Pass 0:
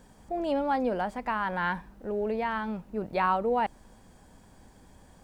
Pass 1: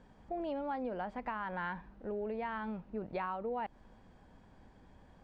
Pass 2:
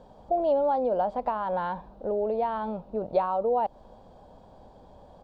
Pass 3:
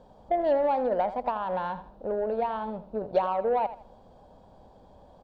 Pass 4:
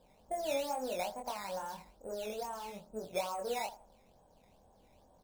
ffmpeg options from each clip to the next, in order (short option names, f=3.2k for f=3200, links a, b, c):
-af "lowpass=3.3k,acompressor=threshold=-30dB:ratio=6,volume=-4.5dB"
-af "firequalizer=gain_entry='entry(310,0);entry(570,12);entry(1900,-12);entry(3700,4);entry(6000,-1)':delay=0.05:min_phase=1,volume=5dB"
-af "aeval=exprs='0.237*(cos(1*acos(clip(val(0)/0.237,-1,1)))-cos(1*PI/2))+0.00841*(cos(7*acos(clip(val(0)/0.237,-1,1)))-cos(7*PI/2))':c=same,aecho=1:1:81|162|243:0.211|0.055|0.0143"
-af "acrusher=samples=10:mix=1:aa=0.000001:lfo=1:lforange=10:lforate=2.3,flanger=delay=22.5:depth=3:speed=0.96,volume=-8dB"